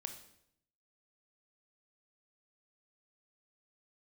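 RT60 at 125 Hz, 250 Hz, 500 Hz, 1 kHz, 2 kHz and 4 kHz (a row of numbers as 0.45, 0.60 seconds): 1.0, 0.90, 0.75, 0.70, 0.65, 0.65 seconds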